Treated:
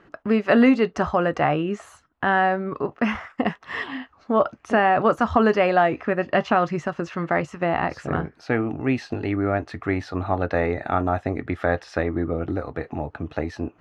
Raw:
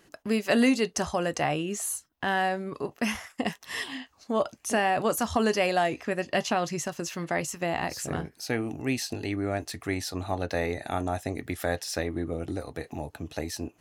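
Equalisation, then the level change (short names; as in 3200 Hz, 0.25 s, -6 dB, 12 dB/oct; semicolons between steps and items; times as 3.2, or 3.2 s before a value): LPF 2000 Hz 12 dB/oct; bell 1300 Hz +6.5 dB 0.43 oct; +6.5 dB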